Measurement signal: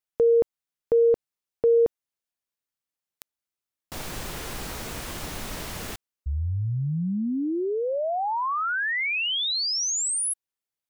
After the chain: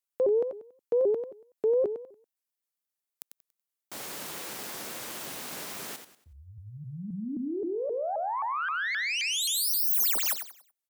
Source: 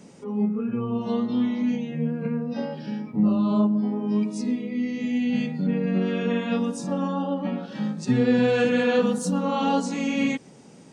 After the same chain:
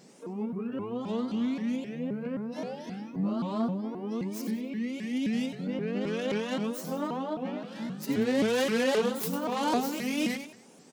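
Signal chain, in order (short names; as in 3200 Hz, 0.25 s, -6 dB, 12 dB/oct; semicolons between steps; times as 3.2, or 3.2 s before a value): tracing distortion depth 0.17 ms; HPF 240 Hz 12 dB/oct; high shelf 8100 Hz +9.5 dB; on a send: feedback echo 94 ms, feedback 31%, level -8.5 dB; on the sum: shaped vibrato saw up 3.8 Hz, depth 250 cents; gain -5 dB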